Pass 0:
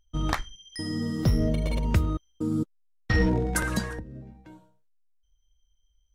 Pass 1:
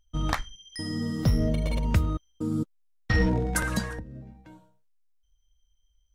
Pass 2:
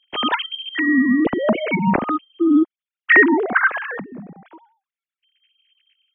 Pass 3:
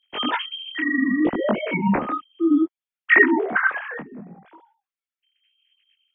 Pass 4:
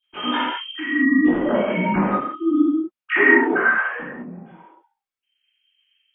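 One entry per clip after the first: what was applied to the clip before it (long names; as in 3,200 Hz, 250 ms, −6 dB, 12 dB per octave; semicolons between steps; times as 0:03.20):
parametric band 370 Hz −6 dB 0.35 octaves
three sine waves on the formant tracks; level +8.5 dB
micro pitch shift up and down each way 23 cents
convolution reverb, pre-delay 3 ms, DRR −13 dB; level −14 dB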